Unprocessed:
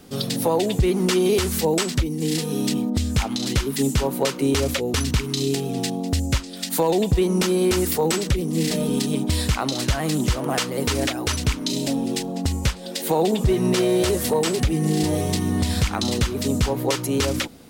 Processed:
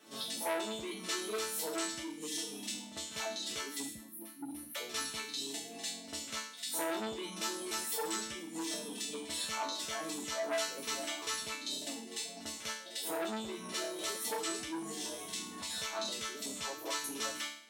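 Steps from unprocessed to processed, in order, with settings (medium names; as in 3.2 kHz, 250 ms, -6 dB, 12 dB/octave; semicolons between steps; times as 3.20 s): frequency weighting A; reverb removal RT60 1.7 s; band-stop 4.7 kHz, Q 9.8; on a send: reverse echo 50 ms -14.5 dB; on the sum: time-frequency box 3.84–4.76 s, 360–9300 Hz -27 dB; in parallel at 0 dB: peak limiter -18.5 dBFS, peak gain reduction 7.5 dB; on the sum: chord resonator A3 sus4, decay 0.55 s; dynamic bell 1.9 kHz, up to -6 dB, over -59 dBFS, Q 1.3; transformer saturation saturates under 1.9 kHz; trim +9 dB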